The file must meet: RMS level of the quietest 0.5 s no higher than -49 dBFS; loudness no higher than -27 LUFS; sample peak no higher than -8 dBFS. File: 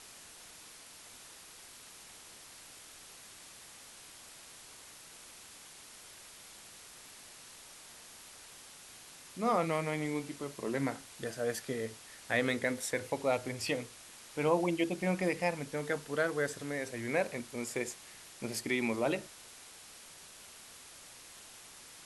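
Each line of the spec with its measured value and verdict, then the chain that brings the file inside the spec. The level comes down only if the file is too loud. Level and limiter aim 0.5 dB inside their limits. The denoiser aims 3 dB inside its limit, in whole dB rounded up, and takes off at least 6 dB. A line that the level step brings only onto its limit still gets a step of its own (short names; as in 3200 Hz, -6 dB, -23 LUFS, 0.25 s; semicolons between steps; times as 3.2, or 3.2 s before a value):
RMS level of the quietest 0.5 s -53 dBFS: OK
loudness -34.5 LUFS: OK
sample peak -16.0 dBFS: OK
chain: none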